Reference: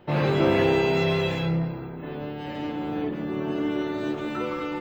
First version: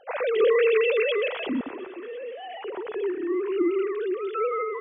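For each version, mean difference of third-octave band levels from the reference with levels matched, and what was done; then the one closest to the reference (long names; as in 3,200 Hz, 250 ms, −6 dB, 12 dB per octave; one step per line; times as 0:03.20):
14.5 dB: three sine waves on the formant tracks
on a send: feedback echo with a high-pass in the loop 238 ms, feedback 74%, high-pass 320 Hz, level −20 dB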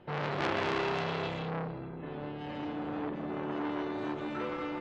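3.5 dB: high-frequency loss of the air 71 metres
saturating transformer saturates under 2,300 Hz
level −4 dB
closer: second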